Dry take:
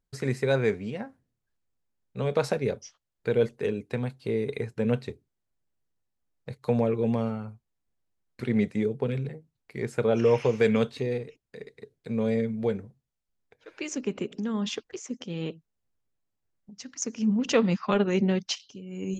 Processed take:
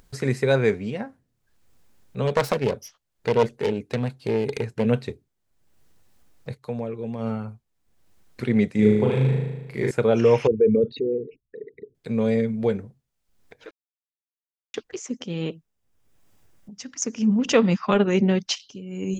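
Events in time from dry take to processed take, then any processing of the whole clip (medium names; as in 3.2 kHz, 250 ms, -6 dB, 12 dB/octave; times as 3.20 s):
2.27–4.86 s: self-modulated delay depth 0.36 ms
6.55–7.31 s: dip -10 dB, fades 0.13 s
8.72–9.91 s: flutter echo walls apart 6.5 m, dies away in 1.1 s
10.47–11.95 s: resonances exaggerated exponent 3
13.71–14.74 s: mute
15.50–18.38 s: band-stop 4.2 kHz
whole clip: upward compressor, threshold -45 dBFS; trim +4.5 dB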